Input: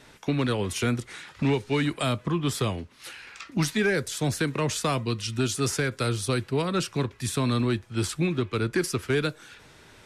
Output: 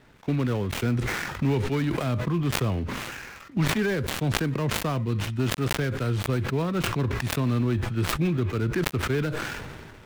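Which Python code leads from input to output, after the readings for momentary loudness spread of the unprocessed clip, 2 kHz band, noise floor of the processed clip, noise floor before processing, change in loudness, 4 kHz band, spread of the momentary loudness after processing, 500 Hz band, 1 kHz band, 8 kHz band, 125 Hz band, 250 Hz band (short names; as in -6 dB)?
7 LU, +0.5 dB, -47 dBFS, -53 dBFS, +0.5 dB, -1.5 dB, 5 LU, -1.5 dB, 0.0 dB, -4.5 dB, +3.0 dB, +0.5 dB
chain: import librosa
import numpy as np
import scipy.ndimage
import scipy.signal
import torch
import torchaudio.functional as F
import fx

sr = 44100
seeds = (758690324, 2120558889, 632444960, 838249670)

y = fx.dead_time(x, sr, dead_ms=0.14)
y = fx.bass_treble(y, sr, bass_db=5, treble_db=-9)
y = fx.sustainer(y, sr, db_per_s=29.0)
y = F.gain(torch.from_numpy(y), -3.0).numpy()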